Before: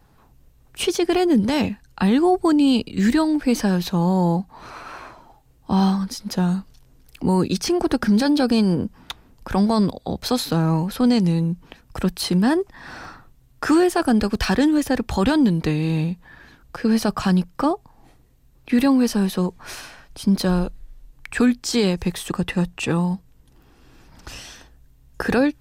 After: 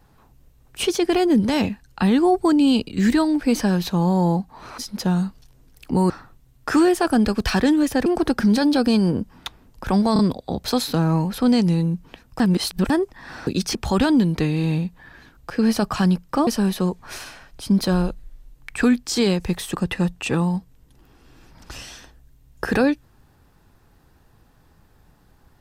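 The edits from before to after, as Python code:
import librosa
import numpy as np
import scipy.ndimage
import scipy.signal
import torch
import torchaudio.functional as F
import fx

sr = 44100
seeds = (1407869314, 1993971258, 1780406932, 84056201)

y = fx.edit(x, sr, fx.cut(start_s=4.78, length_s=1.32),
    fx.swap(start_s=7.42, length_s=0.28, other_s=13.05, other_length_s=1.96),
    fx.stutter(start_s=9.77, slice_s=0.03, count=3),
    fx.reverse_span(start_s=11.98, length_s=0.5),
    fx.cut(start_s=17.73, length_s=1.31), tone=tone)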